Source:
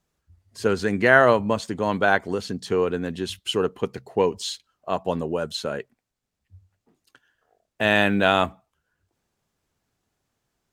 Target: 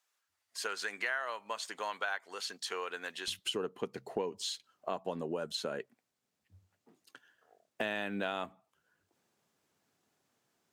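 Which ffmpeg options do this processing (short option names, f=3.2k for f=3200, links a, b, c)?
-af "asetnsamples=n=441:p=0,asendcmd='3.28 highpass f 180',highpass=1.1k,acompressor=threshold=-34dB:ratio=5"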